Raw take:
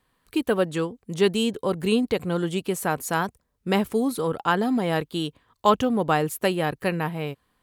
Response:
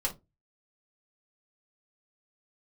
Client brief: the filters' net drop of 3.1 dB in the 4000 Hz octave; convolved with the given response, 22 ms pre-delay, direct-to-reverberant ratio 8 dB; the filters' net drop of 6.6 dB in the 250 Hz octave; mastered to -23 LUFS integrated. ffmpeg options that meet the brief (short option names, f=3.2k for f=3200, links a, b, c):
-filter_complex "[0:a]equalizer=f=250:t=o:g=-9,equalizer=f=4k:t=o:g=-4.5,asplit=2[a][b];[1:a]atrim=start_sample=2205,adelay=22[c];[b][c]afir=irnorm=-1:irlink=0,volume=-13dB[d];[a][d]amix=inputs=2:normalize=0,volume=4dB"